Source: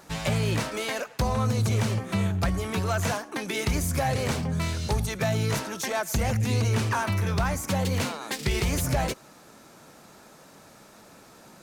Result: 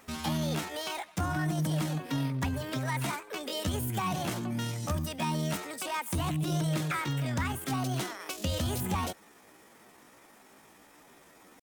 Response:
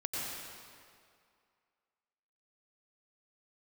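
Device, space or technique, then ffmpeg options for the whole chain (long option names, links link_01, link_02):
chipmunk voice: -af "asetrate=62367,aresample=44100,atempo=0.707107,volume=-5.5dB"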